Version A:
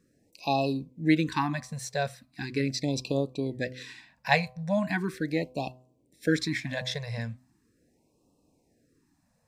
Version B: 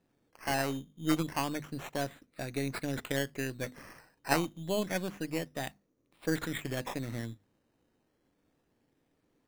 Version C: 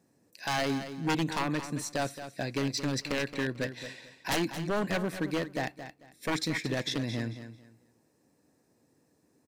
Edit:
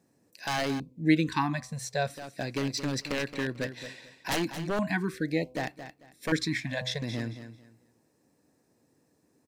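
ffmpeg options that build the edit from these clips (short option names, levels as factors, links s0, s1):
-filter_complex "[0:a]asplit=3[s0][s1][s2];[2:a]asplit=4[s3][s4][s5][s6];[s3]atrim=end=0.802[s7];[s0]atrim=start=0.798:end=2.102[s8];[s4]atrim=start=2.098:end=4.792[s9];[s1]atrim=start=4.788:end=5.552[s10];[s5]atrim=start=5.548:end=6.322[s11];[s2]atrim=start=6.318:end=7.022[s12];[s6]atrim=start=7.018[s13];[s7][s8]acrossfade=d=0.004:c1=hsin:c2=hsin[s14];[s14][s9]acrossfade=d=0.004:c1=hsin:c2=hsin[s15];[s15][s10]acrossfade=d=0.004:c1=hsin:c2=hsin[s16];[s16][s11]acrossfade=d=0.004:c1=hsin:c2=hsin[s17];[s17][s12]acrossfade=d=0.004:c1=hsin:c2=hsin[s18];[s18][s13]acrossfade=d=0.004:c1=hsin:c2=hsin"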